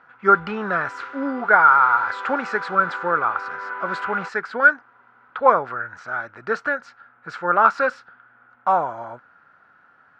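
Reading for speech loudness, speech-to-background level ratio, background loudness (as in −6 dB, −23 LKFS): −20.5 LKFS, 12.0 dB, −32.5 LKFS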